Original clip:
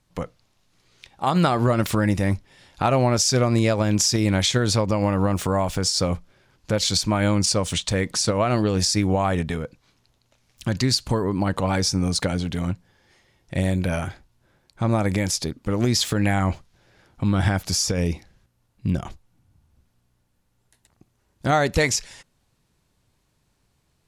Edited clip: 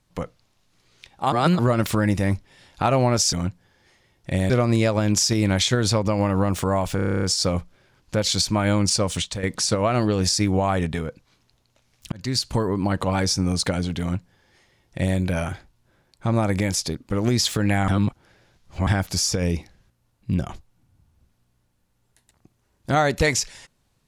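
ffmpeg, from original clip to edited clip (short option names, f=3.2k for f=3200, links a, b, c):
-filter_complex "[0:a]asplit=18[a][b][c][d][e][f][g][h][i][j][k][l][m][n][o][p][q][r];[a]atrim=end=1.322[s];[b]atrim=start=1.318:end=1.592,asetpts=PTS-STARTPTS,areverse[t];[c]atrim=start=1.588:end=3.332[u];[d]atrim=start=12.568:end=13.742[v];[e]atrim=start=3.328:end=5.822[w];[f]atrim=start=5.788:end=5.822[x];[g]atrim=start=5.788:end=5.822[y];[h]atrim=start=5.788:end=5.822[z];[i]atrim=start=5.788:end=5.822[aa];[j]atrim=start=5.788:end=5.822[ab];[k]atrim=start=5.788:end=5.822[ac];[l]atrim=start=5.788:end=5.822[ad];[m]atrim=start=5.788:end=5.822[ae];[n]atrim=start=5.788:end=7.99,asetpts=PTS-STARTPTS,afade=t=out:st=1.942:d=0.26:silence=0.298538[af];[o]atrim=start=7.99:end=10.68,asetpts=PTS-STARTPTS,afade=t=in:d=0.004:c=hsin:silence=0.298538,afade=t=out:st=2.686:d=0.004:c=hsin[ag];[p]atrim=start=10.68:end=16.442,asetpts=PTS-STARTPTS,afade=t=in:d=0.46:c=qsin[ah];[q]atrim=start=16.438:end=17.432,asetpts=PTS-STARTPTS,areverse[ai];[r]atrim=start=17.428[aj];[s][t]acrossfade=d=0.004:c1=hsin:c2=hsin[ak];[ak][u]acrossfade=d=0.004:c1=hsin:c2=hsin[al];[al][v]acrossfade=d=0.004:c1=hsin:c2=hsin[am];[am][w]acrossfade=d=0.004:c1=hsin:c2=hsin[an];[an][x]acrossfade=d=0.004:c1=hsin:c2=hsin[ao];[ao][y]acrossfade=d=0.004:c1=hsin:c2=hsin[ap];[ap][z]acrossfade=d=0.004:c1=hsin:c2=hsin[aq];[aq][aa]acrossfade=d=0.004:c1=hsin:c2=hsin[ar];[ar][ab]acrossfade=d=0.004:c1=hsin:c2=hsin[as];[as][ac]acrossfade=d=0.004:c1=hsin:c2=hsin[at];[at][ad]acrossfade=d=0.004:c1=hsin:c2=hsin[au];[au][ae]acrossfade=d=0.004:c1=hsin:c2=hsin[av];[af][ag][ah]concat=n=3:v=0:a=1[aw];[av][aw]acrossfade=d=0.004:c1=hsin:c2=hsin[ax];[ax][ai]acrossfade=d=0.004:c1=hsin:c2=hsin[ay];[ay][aj]acrossfade=d=0.004:c1=hsin:c2=hsin"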